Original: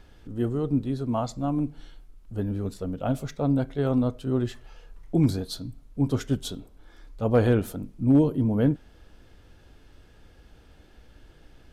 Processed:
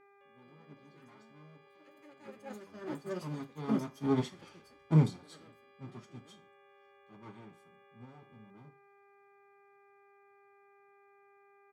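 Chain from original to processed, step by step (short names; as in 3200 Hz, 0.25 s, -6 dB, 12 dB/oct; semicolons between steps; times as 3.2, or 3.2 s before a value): minimum comb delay 5 ms; Doppler pass-by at 4.43, 19 m/s, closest 2.4 m; HPF 100 Hz 24 dB/oct; high shelf 4500 Hz +10.5 dB; comb 0.9 ms, depth 53%; buzz 400 Hz, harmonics 6, -59 dBFS -5 dB/oct; air absorption 77 m; FDN reverb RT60 0.35 s, low-frequency decay 0.85×, high-frequency decay 0.85×, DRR 6 dB; echoes that change speed 0.209 s, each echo +6 st, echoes 2, each echo -6 dB; upward expander 1.5:1, over -49 dBFS; gain +7.5 dB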